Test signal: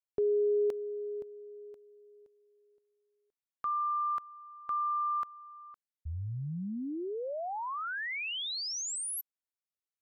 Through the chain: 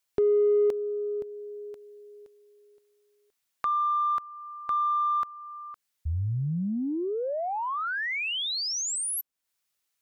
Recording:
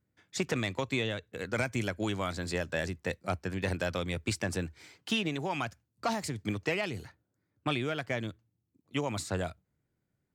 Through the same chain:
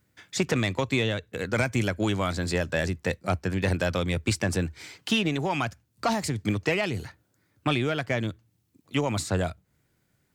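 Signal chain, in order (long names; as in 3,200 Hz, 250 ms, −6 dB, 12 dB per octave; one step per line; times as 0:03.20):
in parallel at −10.5 dB: soft clipping −31 dBFS
on the sum: low-shelf EQ 210 Hz +3 dB
one half of a high-frequency compander encoder only
level +4 dB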